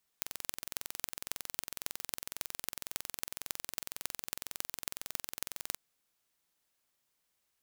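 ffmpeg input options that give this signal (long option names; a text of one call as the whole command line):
ffmpeg -f lavfi -i "aevalsrc='0.531*eq(mod(n,2014),0)*(0.5+0.5*eq(mod(n,12084),0))':duration=5.55:sample_rate=44100" out.wav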